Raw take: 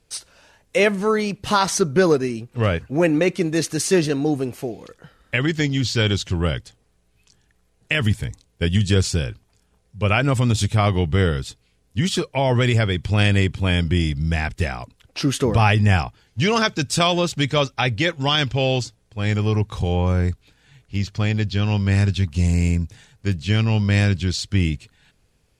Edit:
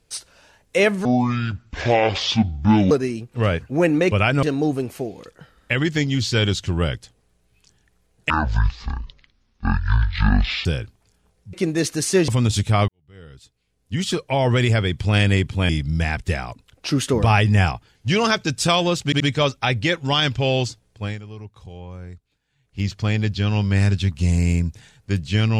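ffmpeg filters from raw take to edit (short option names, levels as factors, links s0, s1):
-filter_complex "[0:a]asplit=15[s0][s1][s2][s3][s4][s5][s6][s7][s8][s9][s10][s11][s12][s13][s14];[s0]atrim=end=1.054[s15];[s1]atrim=start=1.05:end=2.11,asetpts=PTS-STARTPTS,asetrate=25137,aresample=44100[s16];[s2]atrim=start=2.106:end=3.312[s17];[s3]atrim=start=10.008:end=10.332[s18];[s4]atrim=start=4.058:end=7.934[s19];[s5]atrim=start=7.93:end=9.13,asetpts=PTS-STARTPTS,asetrate=22491,aresample=44100[s20];[s6]atrim=start=9.126:end=10.012[s21];[s7]atrim=start=3.308:end=4.062[s22];[s8]atrim=start=10.328:end=10.93,asetpts=PTS-STARTPTS,afade=t=out:st=0.598:d=0.004:c=hsin[s23];[s9]atrim=start=10.93:end=13.742,asetpts=PTS-STARTPTS,afade=t=in:d=1.31:c=qua[s24];[s10]atrim=start=14.008:end=17.442[s25];[s11]atrim=start=17.358:end=17.442[s26];[s12]atrim=start=17.358:end=19.39,asetpts=PTS-STARTPTS,afade=t=out:st=1.832:d=0.2:c=qua:silence=0.141254[s27];[s13]atrim=start=19.39:end=20.75,asetpts=PTS-STARTPTS,volume=0.141[s28];[s14]atrim=start=20.75,asetpts=PTS-STARTPTS,afade=t=in:d=0.2:c=qua:silence=0.141254[s29];[s15][s16]acrossfade=d=0.004:c1=hsin:c2=hsin[s30];[s30][s17]acrossfade=d=0.004:c1=hsin:c2=hsin[s31];[s31][s18]acrossfade=d=0.004:c1=hsin:c2=hsin[s32];[s32][s19]acrossfade=d=0.004:c1=hsin:c2=hsin[s33];[s33][s20]acrossfade=d=0.004:c1=hsin:c2=hsin[s34];[s34][s21]acrossfade=d=0.004:c1=hsin:c2=hsin[s35];[s35][s22]acrossfade=d=0.004:c1=hsin:c2=hsin[s36];[s23][s24]concat=n=2:v=0:a=1[s37];[s36][s37]acrossfade=d=0.004:c1=hsin:c2=hsin[s38];[s38][s25]acrossfade=d=0.004:c1=hsin:c2=hsin[s39];[s39][s26]acrossfade=d=0.004:c1=hsin:c2=hsin[s40];[s27][s28][s29]concat=n=3:v=0:a=1[s41];[s40][s41]acrossfade=d=0.004:c1=hsin:c2=hsin"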